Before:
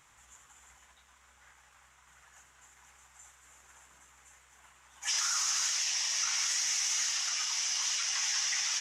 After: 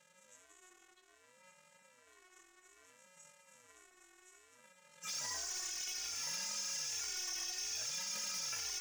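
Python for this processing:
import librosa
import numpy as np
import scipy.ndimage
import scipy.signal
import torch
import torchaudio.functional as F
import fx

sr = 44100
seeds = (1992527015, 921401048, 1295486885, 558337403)

p1 = fx.robotise(x, sr, hz=367.0)
p2 = np.clip(p1, -10.0 ** (-33.0 / 20.0), 10.0 ** (-33.0 / 20.0))
p3 = p2 + fx.echo_single(p2, sr, ms=1157, db=-9.5, dry=0)
y = fx.ring_lfo(p3, sr, carrier_hz=460.0, swing_pct=25, hz=0.61)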